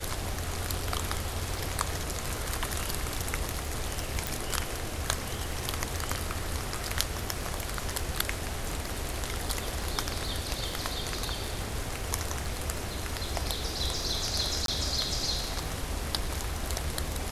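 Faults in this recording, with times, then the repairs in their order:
crackle 23/s -35 dBFS
4.27 pop
14.66–14.68 gap 22 ms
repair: de-click; interpolate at 14.66, 22 ms

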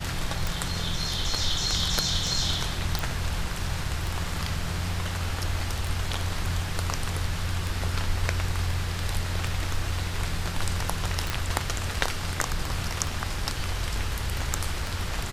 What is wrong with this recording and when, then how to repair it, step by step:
tick 33 1/3 rpm
2.99 pop
11.3 pop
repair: de-click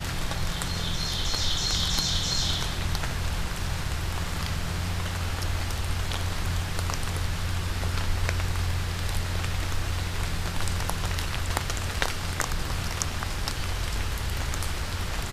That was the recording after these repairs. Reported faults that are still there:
none

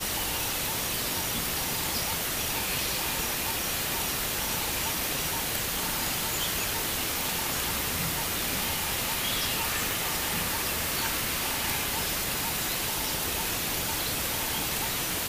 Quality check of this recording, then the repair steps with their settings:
9.91 pop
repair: de-click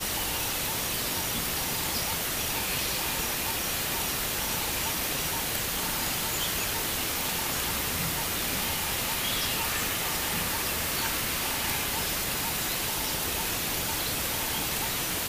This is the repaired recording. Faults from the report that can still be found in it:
none

